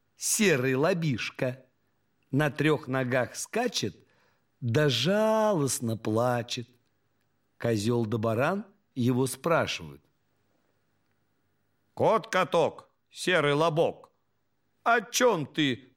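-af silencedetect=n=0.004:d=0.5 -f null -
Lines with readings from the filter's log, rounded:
silence_start: 1.61
silence_end: 2.32 | silence_duration: 0.71
silence_start: 4.00
silence_end: 4.62 | silence_duration: 0.62
silence_start: 6.64
silence_end: 7.61 | silence_duration: 0.96
silence_start: 9.97
silence_end: 11.97 | silence_duration: 2.00
silence_start: 14.05
silence_end: 14.86 | silence_duration: 0.81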